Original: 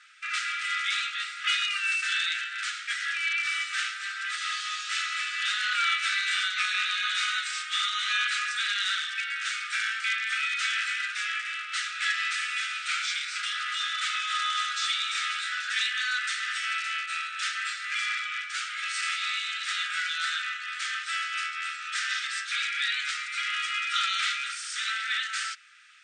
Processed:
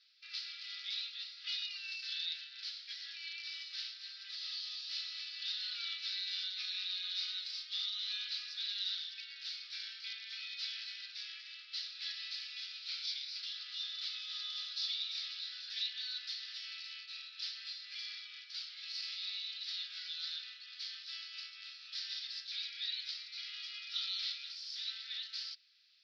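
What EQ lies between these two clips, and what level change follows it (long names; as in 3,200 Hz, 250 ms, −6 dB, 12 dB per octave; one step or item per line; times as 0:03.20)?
flat-topped band-pass 4,800 Hz, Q 3.5
high-frequency loss of the air 360 metres
+13.0 dB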